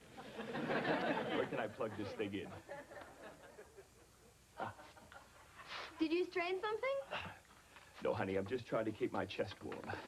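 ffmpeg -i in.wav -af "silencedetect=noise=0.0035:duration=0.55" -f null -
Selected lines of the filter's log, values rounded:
silence_start: 3.80
silence_end: 4.58 | silence_duration: 0.78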